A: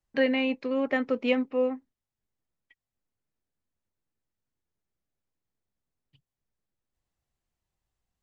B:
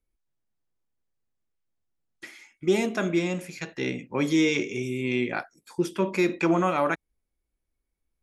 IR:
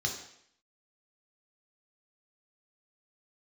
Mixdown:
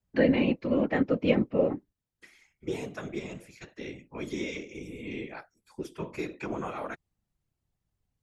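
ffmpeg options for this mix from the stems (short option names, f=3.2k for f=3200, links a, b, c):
-filter_complex "[0:a]lowshelf=f=360:g=8.5,volume=3dB[a];[1:a]volume=-5.5dB[b];[a][b]amix=inputs=2:normalize=0,afftfilt=real='hypot(re,im)*cos(2*PI*random(0))':imag='hypot(re,im)*sin(2*PI*random(1))':win_size=512:overlap=0.75"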